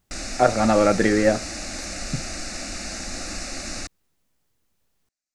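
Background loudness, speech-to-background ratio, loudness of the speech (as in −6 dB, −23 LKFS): −31.5 LKFS, 11.5 dB, −20.0 LKFS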